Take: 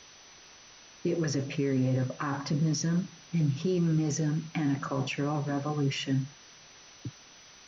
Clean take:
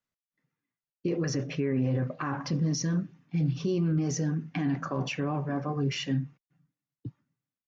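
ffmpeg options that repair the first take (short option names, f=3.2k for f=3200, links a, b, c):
-af "adeclick=t=4,bandreject=f=6k:w=30,afwtdn=0.0035,asetnsamples=n=441:p=0,asendcmd='7.2 volume volume -6dB',volume=0dB"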